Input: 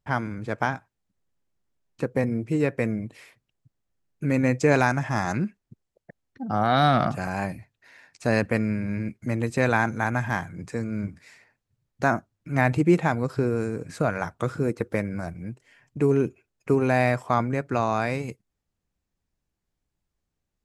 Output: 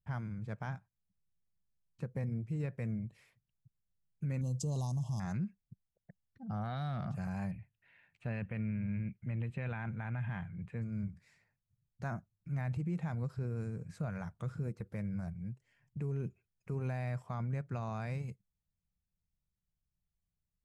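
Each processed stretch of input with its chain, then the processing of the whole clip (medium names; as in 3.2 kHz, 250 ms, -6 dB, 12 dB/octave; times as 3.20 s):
4.41–5.20 s: brick-wall FIR band-stop 1.2–2.7 kHz + tone controls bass +5 dB, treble +14 dB
7.51–10.82 s: resonant high shelf 4 kHz -11.5 dB, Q 3 + band-stop 1.1 kHz, Q 26
whole clip: FFT filter 190 Hz 0 dB, 270 Hz -15 dB, 530 Hz -12 dB; peak limiter -24.5 dBFS; trim -5 dB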